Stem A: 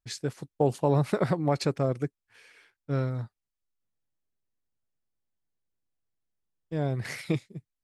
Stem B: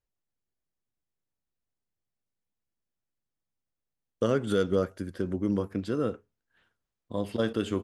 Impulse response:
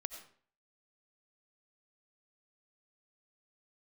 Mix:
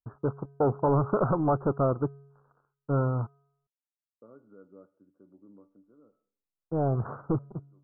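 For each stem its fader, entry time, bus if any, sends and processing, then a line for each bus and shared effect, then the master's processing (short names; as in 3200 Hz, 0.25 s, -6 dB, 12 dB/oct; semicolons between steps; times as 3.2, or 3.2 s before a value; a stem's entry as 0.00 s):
-2.0 dB, 0.00 s, muted 3.67–5.56, no send, bell 1100 Hz +7 dB 0.95 oct; sample leveller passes 3; resonator 140 Hz, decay 0.94 s, harmonics odd, mix 40%
-19.0 dB, 0.00 s, send -12.5 dB, HPF 130 Hz 24 dB/oct; resonator 290 Hz, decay 0.27 s, harmonics all, mix 70%; auto duck -19 dB, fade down 1.15 s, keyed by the first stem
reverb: on, RT60 0.50 s, pre-delay 50 ms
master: steep low-pass 1400 Hz 96 dB/oct; bell 150 Hz -3.5 dB 0.45 oct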